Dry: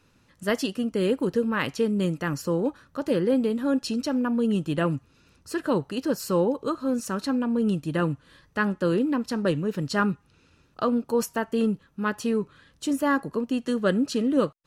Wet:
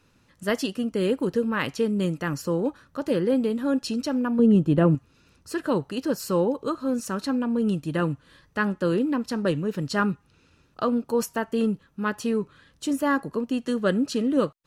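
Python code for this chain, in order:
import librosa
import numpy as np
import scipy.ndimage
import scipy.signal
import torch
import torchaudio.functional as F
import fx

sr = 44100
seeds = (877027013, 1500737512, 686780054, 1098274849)

y = fx.tilt_shelf(x, sr, db=7.5, hz=1100.0, at=(4.39, 4.95))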